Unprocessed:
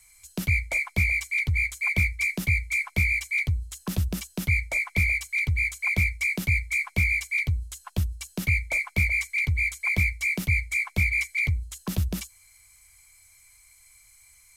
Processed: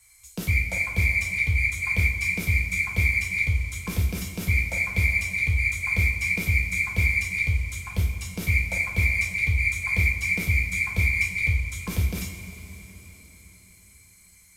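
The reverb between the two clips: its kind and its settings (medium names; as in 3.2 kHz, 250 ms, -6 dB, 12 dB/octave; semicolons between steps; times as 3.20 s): two-slope reverb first 0.46 s, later 4.5 s, from -16 dB, DRR -2.5 dB; trim -3.5 dB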